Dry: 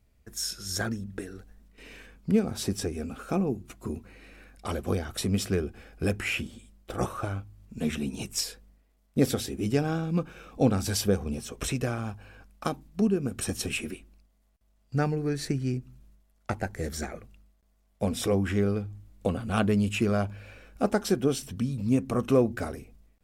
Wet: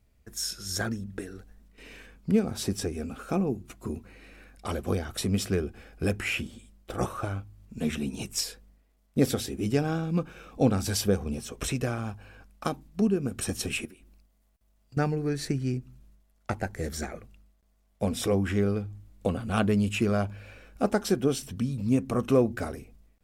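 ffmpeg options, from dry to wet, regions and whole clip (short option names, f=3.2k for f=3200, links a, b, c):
-filter_complex "[0:a]asettb=1/sr,asplit=3[a][b][c];[a]atrim=end=13.854[d];[b]atrim=start=13.85:end=14.97,asetpts=PTS-STARTPTS,afade=t=in:d=0.004:c=qsin,afade=t=out:st=1.116:d=0.004:c=qsin,highshelf=f=11k:g=5.5,acrusher=bits=9:mode=log:mix=0:aa=0.000001,acompressor=threshold=-49dB:ratio=4:attack=3.2:release=140:knee=1:detection=peak[e];[c]atrim=start=14.966[f];[d][e]acrossfade=d=0.004:c1=hsin:c2=qsin[g];[g][f]acrossfade=d=0.004:c1=qsin:c2=hsin"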